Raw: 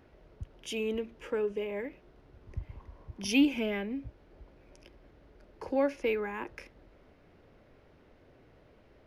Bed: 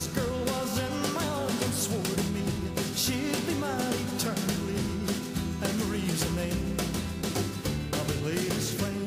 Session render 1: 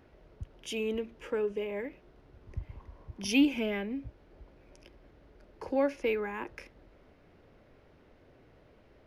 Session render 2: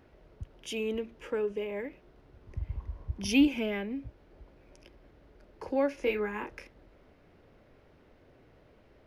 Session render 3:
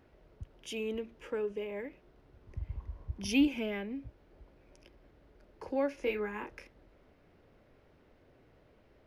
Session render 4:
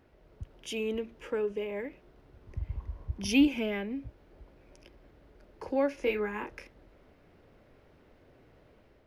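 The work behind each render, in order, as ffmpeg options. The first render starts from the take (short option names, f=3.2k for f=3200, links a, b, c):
-af anull
-filter_complex "[0:a]asettb=1/sr,asplit=3[a][b][c];[a]atrim=end=2.614[d];[b]atrim=start=2.61:end=3.48,asetpts=PTS-STARTPTS,afade=t=in:d=0.004:c=qsin,afade=t=out:st=0.866:d=0.004:c=qsin,equalizer=f=61:t=o:w=1.9:g=12.5[e];[c]atrim=start=3.476[f];[d][e]acrossfade=d=0.004:c1=hsin:c2=qsin[g];[g][f]acrossfade=d=0.004:c1=qsin:c2=hsin,asettb=1/sr,asplit=3[h][i][j];[h]atrim=end=5.954[k];[i]atrim=start=5.95:end=6.58,asetpts=PTS-STARTPTS,afade=t=in:d=0.004:c=qsin,afade=t=out:st=0.626:d=0.004:c=qsin,asplit=2[l][m];[m]adelay=24,volume=-4.5dB[n];[l][n]amix=inputs=2:normalize=0,atrim=end_sample=27783[o];[j]atrim=start=6.576[p];[k][o]acrossfade=d=0.004:c1=hsin:c2=qsin[q];[q][p]acrossfade=d=0.004:c1=qsin:c2=hsin"
-af "volume=-3.5dB"
-af "dynaudnorm=f=120:g=5:m=3.5dB"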